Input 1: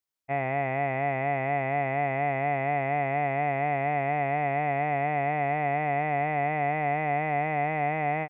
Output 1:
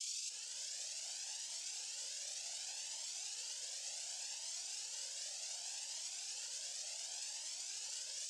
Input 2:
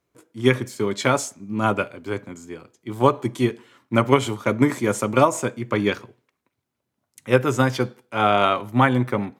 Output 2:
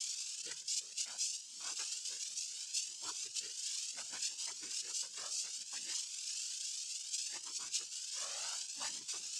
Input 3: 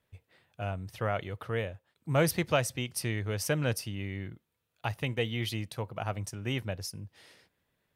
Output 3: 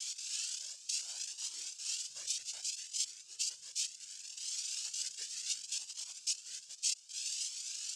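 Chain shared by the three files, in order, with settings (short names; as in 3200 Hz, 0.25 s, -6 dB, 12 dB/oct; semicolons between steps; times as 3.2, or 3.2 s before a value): switching spikes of -15.5 dBFS; band-pass 5200 Hz, Q 14; noise vocoder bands 8; vocal rider within 4 dB 0.5 s; cascading flanger rising 0.67 Hz; gain +5.5 dB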